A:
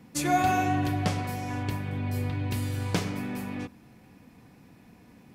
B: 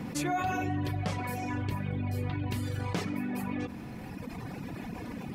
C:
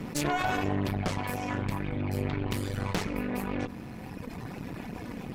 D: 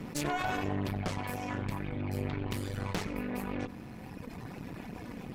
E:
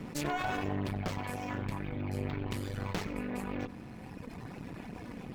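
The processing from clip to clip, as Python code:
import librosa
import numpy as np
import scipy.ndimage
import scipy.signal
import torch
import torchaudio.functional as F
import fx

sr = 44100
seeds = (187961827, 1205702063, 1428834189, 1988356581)

y1 = fx.dereverb_blind(x, sr, rt60_s=1.6)
y1 = fx.high_shelf(y1, sr, hz=4200.0, db=-7.0)
y1 = fx.env_flatten(y1, sr, amount_pct=70)
y1 = y1 * 10.0 ** (-7.5 / 20.0)
y2 = fx.cheby_harmonics(y1, sr, harmonics=(6, 8), levels_db=(-8, -18), full_scale_db=-17.5)
y3 = y2 + 10.0 ** (-21.5 / 20.0) * np.pad(y2, (int(93 * sr / 1000.0), 0))[:len(y2)]
y3 = y3 * 10.0 ** (-4.0 / 20.0)
y4 = np.interp(np.arange(len(y3)), np.arange(len(y3))[::2], y3[::2])
y4 = y4 * 10.0 ** (-1.0 / 20.0)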